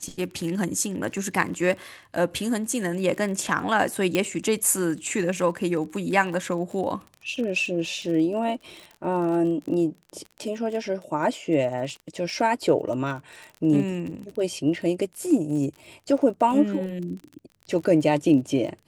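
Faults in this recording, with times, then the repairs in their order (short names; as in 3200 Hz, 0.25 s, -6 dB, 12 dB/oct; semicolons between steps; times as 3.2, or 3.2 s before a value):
crackle 30/s -33 dBFS
4.15 pop -10 dBFS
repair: de-click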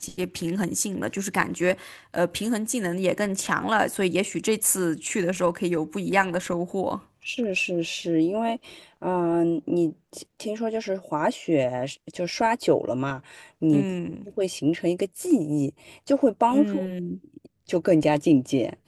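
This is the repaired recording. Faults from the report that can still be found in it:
none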